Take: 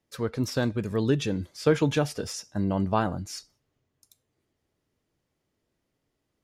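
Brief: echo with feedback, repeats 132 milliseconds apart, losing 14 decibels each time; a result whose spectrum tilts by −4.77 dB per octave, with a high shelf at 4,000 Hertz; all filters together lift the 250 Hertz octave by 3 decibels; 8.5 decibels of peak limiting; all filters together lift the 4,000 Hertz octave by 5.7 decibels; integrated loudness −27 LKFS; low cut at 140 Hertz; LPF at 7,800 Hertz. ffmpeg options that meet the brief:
ffmpeg -i in.wav -af "highpass=140,lowpass=7800,equalizer=frequency=250:width_type=o:gain=4.5,highshelf=frequency=4000:gain=5,equalizer=frequency=4000:width_type=o:gain=4.5,alimiter=limit=-15.5dB:level=0:latency=1,aecho=1:1:132|264:0.2|0.0399,volume=1dB" out.wav

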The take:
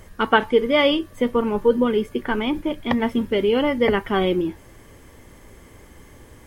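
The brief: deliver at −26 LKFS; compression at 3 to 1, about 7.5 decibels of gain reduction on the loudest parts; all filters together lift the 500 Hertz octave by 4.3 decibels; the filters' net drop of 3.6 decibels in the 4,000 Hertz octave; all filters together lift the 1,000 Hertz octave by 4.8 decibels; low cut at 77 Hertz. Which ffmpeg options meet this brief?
ffmpeg -i in.wav -af "highpass=77,equalizer=frequency=500:width_type=o:gain=4,equalizer=frequency=1000:width_type=o:gain=5,equalizer=frequency=4000:width_type=o:gain=-6,acompressor=threshold=-17dB:ratio=3,volume=-4dB" out.wav

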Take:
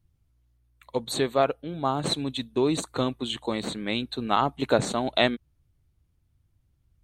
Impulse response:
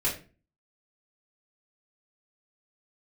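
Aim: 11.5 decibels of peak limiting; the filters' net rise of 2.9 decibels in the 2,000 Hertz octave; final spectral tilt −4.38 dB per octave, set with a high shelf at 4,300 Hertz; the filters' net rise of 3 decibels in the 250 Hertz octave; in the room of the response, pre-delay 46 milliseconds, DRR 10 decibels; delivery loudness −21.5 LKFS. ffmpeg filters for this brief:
-filter_complex "[0:a]equalizer=frequency=250:width_type=o:gain=3.5,equalizer=frequency=2000:width_type=o:gain=5.5,highshelf=frequency=4300:gain=-9,alimiter=limit=-17dB:level=0:latency=1,asplit=2[link_01][link_02];[1:a]atrim=start_sample=2205,adelay=46[link_03];[link_02][link_03]afir=irnorm=-1:irlink=0,volume=-18.5dB[link_04];[link_01][link_04]amix=inputs=2:normalize=0,volume=7.5dB"

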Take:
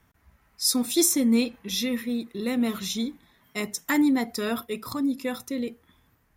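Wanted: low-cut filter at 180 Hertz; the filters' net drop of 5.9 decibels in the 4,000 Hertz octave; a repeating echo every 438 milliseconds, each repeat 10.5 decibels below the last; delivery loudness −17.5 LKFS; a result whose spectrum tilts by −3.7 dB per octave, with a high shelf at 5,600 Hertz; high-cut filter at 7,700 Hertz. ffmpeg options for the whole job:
ffmpeg -i in.wav -af "highpass=180,lowpass=7700,equalizer=frequency=4000:width_type=o:gain=-3.5,highshelf=frequency=5600:gain=-7.5,aecho=1:1:438|876|1314:0.299|0.0896|0.0269,volume=10.5dB" out.wav

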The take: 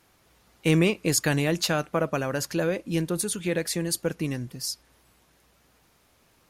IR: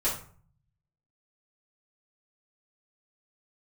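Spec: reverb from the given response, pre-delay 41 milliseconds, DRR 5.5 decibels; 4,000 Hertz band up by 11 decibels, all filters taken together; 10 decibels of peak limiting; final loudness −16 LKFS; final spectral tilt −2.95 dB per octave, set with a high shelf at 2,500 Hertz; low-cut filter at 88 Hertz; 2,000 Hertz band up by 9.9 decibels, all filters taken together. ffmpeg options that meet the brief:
-filter_complex "[0:a]highpass=88,equalizer=frequency=2000:width_type=o:gain=8.5,highshelf=frequency=2500:gain=3.5,equalizer=frequency=4000:width_type=o:gain=8.5,alimiter=limit=-12dB:level=0:latency=1,asplit=2[link_01][link_02];[1:a]atrim=start_sample=2205,adelay=41[link_03];[link_02][link_03]afir=irnorm=-1:irlink=0,volume=-14dB[link_04];[link_01][link_04]amix=inputs=2:normalize=0,volume=8dB"

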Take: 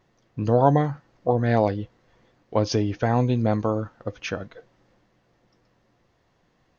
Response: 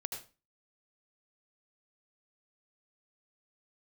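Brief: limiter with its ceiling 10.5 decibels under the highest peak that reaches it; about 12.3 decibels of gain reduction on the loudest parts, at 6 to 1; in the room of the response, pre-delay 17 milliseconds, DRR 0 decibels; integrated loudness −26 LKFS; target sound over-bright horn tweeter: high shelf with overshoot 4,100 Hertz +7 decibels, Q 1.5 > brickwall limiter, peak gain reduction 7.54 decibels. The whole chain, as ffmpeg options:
-filter_complex "[0:a]acompressor=threshold=-27dB:ratio=6,alimiter=level_in=1dB:limit=-24dB:level=0:latency=1,volume=-1dB,asplit=2[link_01][link_02];[1:a]atrim=start_sample=2205,adelay=17[link_03];[link_02][link_03]afir=irnorm=-1:irlink=0,volume=0dB[link_04];[link_01][link_04]amix=inputs=2:normalize=0,highshelf=frequency=4100:width_type=q:width=1.5:gain=7,volume=8.5dB,alimiter=limit=-15.5dB:level=0:latency=1"

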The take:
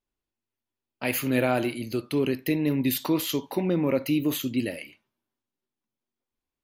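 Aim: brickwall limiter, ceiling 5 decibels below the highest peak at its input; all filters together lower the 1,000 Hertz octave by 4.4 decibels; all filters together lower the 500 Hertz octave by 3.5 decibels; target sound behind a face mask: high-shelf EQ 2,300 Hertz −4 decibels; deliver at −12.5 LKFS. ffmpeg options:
ffmpeg -i in.wav -af "equalizer=frequency=500:width_type=o:gain=-3.5,equalizer=frequency=1000:width_type=o:gain=-4,alimiter=limit=-17.5dB:level=0:latency=1,highshelf=frequency=2300:gain=-4,volume=17dB" out.wav

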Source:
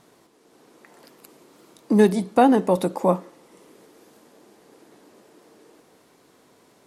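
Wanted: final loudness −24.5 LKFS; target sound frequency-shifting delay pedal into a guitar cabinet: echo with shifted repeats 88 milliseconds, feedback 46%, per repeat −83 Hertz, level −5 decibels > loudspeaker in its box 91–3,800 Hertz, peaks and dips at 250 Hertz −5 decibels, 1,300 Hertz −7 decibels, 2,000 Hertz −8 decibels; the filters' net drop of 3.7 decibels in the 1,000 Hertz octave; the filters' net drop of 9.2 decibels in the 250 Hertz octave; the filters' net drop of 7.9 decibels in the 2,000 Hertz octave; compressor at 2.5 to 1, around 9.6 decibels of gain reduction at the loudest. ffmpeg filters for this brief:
ffmpeg -i in.wav -filter_complex "[0:a]equalizer=frequency=250:width_type=o:gain=-8.5,equalizer=frequency=1000:width_type=o:gain=-3,equalizer=frequency=2000:width_type=o:gain=-3.5,acompressor=threshold=-29dB:ratio=2.5,asplit=7[link_01][link_02][link_03][link_04][link_05][link_06][link_07];[link_02]adelay=88,afreqshift=-83,volume=-5dB[link_08];[link_03]adelay=176,afreqshift=-166,volume=-11.7dB[link_09];[link_04]adelay=264,afreqshift=-249,volume=-18.5dB[link_10];[link_05]adelay=352,afreqshift=-332,volume=-25.2dB[link_11];[link_06]adelay=440,afreqshift=-415,volume=-32dB[link_12];[link_07]adelay=528,afreqshift=-498,volume=-38.7dB[link_13];[link_01][link_08][link_09][link_10][link_11][link_12][link_13]amix=inputs=7:normalize=0,highpass=91,equalizer=frequency=250:width_type=q:width=4:gain=-5,equalizer=frequency=1300:width_type=q:width=4:gain=-7,equalizer=frequency=2000:width_type=q:width=4:gain=-8,lowpass=frequency=3800:width=0.5412,lowpass=frequency=3800:width=1.3066,volume=7dB" out.wav

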